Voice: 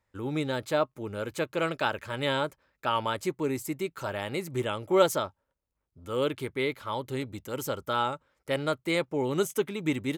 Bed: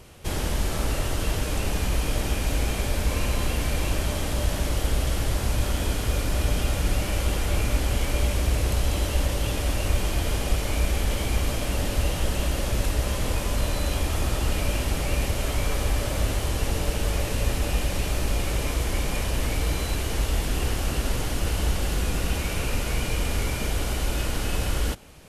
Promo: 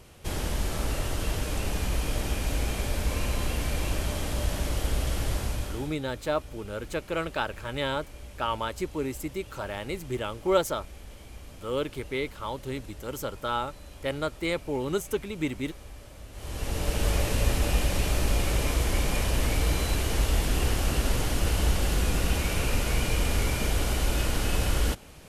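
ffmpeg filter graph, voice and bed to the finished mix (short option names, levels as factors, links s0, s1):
-filter_complex "[0:a]adelay=5550,volume=0.841[s0];[1:a]volume=7.08,afade=t=out:st=5.34:d=0.62:silence=0.141254,afade=t=in:st=16.32:d=0.75:silence=0.0944061[s1];[s0][s1]amix=inputs=2:normalize=0"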